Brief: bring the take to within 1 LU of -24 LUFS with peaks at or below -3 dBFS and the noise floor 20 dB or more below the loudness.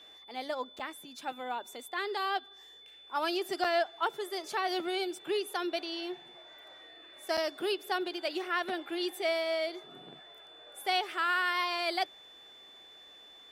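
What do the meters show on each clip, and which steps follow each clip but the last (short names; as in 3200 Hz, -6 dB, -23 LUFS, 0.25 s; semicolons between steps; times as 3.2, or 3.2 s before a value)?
dropouts 3; longest dropout 5.8 ms; steady tone 3500 Hz; tone level -52 dBFS; loudness -33.5 LUFS; peak -16.5 dBFS; loudness target -24.0 LUFS
-> interpolate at 0.79/3.64/7.37, 5.8 ms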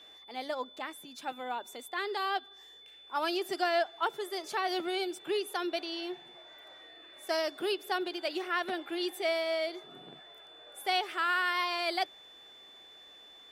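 dropouts 0; steady tone 3500 Hz; tone level -52 dBFS
-> notch 3500 Hz, Q 30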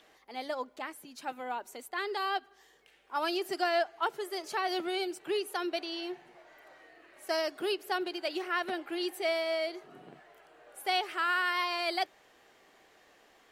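steady tone none; loudness -33.5 LUFS; peak -17.0 dBFS; loudness target -24.0 LUFS
-> gain +9.5 dB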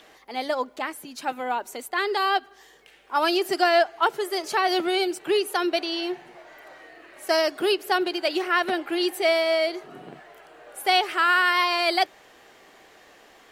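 loudness -24.0 LUFS; peak -7.5 dBFS; noise floor -54 dBFS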